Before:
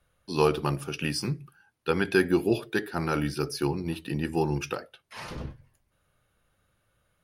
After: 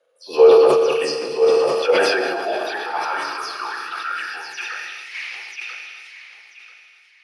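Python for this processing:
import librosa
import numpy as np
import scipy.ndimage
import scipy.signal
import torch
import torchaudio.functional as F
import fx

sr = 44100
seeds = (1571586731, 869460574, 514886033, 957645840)

p1 = fx.spec_delay(x, sr, highs='early', ms=120)
p2 = scipy.signal.sosfilt(scipy.signal.butter(2, 110.0, 'highpass', fs=sr, output='sos'), p1)
p3 = fx.high_shelf(p2, sr, hz=2900.0, db=7.5)
p4 = p3 + fx.echo_feedback(p3, sr, ms=988, feedback_pct=25, wet_db=-8, dry=0)
p5 = fx.rev_schroeder(p4, sr, rt60_s=3.0, comb_ms=27, drr_db=3.0)
p6 = fx.filter_sweep_highpass(p5, sr, from_hz=480.0, to_hz=2200.0, start_s=1.55, end_s=5.22, q=5.7)
p7 = fx.level_steps(p6, sr, step_db=15)
p8 = p6 + (p7 * librosa.db_to_amplitude(-0.5))
p9 = scipy.signal.sosfilt(scipy.signal.butter(2, 5900.0, 'lowpass', fs=sr, output='sos'), p8)
p10 = fx.peak_eq(p9, sr, hz=600.0, db=7.0, octaves=0.69)
p11 = fx.sustainer(p10, sr, db_per_s=24.0)
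y = p11 * librosa.db_to_amplitude(-6.0)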